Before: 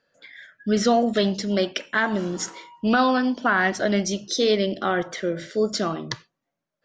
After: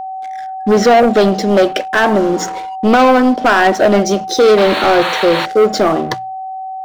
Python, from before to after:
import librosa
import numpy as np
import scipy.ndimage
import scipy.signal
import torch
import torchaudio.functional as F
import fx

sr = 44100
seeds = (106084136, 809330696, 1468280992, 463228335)

y = fx.spec_paint(x, sr, seeds[0], shape='noise', start_s=4.57, length_s=0.89, low_hz=870.0, high_hz=4500.0, level_db=-29.0)
y = fx.peak_eq(y, sr, hz=560.0, db=13.5, octaves=2.7)
y = fx.leveller(y, sr, passes=3)
y = fx.hum_notches(y, sr, base_hz=60, count=3)
y = y + 10.0 ** (-16.0 / 20.0) * np.sin(2.0 * np.pi * 760.0 * np.arange(len(y)) / sr)
y = F.gain(torch.from_numpy(y), -6.0).numpy()